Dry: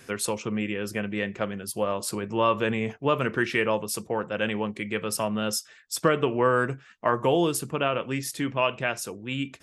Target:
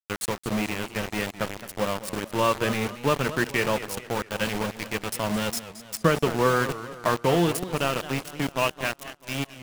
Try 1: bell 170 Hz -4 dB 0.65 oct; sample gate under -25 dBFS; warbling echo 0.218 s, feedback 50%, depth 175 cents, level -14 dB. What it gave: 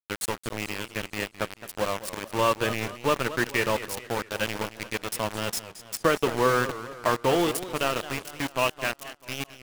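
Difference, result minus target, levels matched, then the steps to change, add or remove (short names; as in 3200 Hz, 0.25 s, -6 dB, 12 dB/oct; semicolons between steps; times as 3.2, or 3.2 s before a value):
125 Hz band -4.0 dB
change: bell 170 Hz +6.5 dB 0.65 oct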